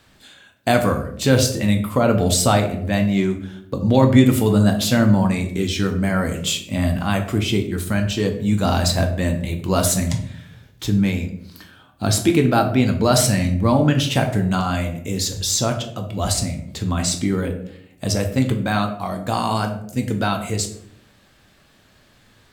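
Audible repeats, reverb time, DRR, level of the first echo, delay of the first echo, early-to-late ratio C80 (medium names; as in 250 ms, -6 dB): no echo, 0.70 s, 4.0 dB, no echo, no echo, 12.5 dB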